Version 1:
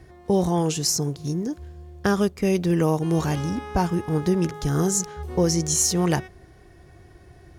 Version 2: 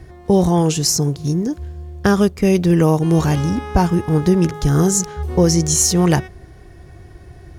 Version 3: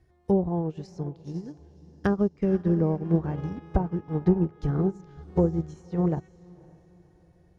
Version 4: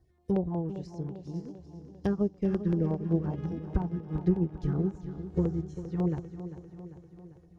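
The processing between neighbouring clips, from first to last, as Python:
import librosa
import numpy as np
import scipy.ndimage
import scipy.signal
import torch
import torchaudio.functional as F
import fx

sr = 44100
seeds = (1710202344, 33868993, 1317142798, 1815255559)

y1 = fx.low_shelf(x, sr, hz=140.0, db=6.0)
y1 = F.gain(torch.from_numpy(y1), 5.5).numpy()
y2 = fx.env_lowpass_down(y1, sr, base_hz=720.0, full_db=-9.5)
y2 = fx.echo_diffused(y2, sr, ms=532, feedback_pct=46, wet_db=-11.5)
y2 = fx.upward_expand(y2, sr, threshold_db=-22.0, expansion=2.5)
y2 = F.gain(torch.from_numpy(y2), -5.0).numpy()
y3 = fx.filter_lfo_notch(y2, sr, shape='saw_down', hz=5.5, low_hz=400.0, high_hz=2700.0, q=0.88)
y3 = fx.echo_feedback(y3, sr, ms=396, feedback_pct=58, wet_db=-12.0)
y3 = F.gain(torch.from_numpy(y3), -3.5).numpy()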